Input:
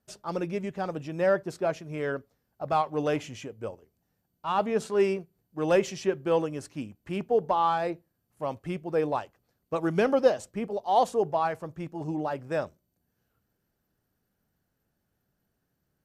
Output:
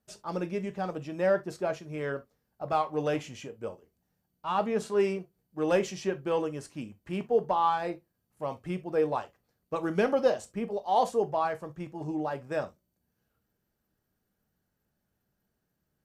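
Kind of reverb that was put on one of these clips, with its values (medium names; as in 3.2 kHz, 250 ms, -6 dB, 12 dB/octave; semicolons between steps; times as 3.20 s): gated-style reverb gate 90 ms falling, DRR 8.5 dB; trim -2.5 dB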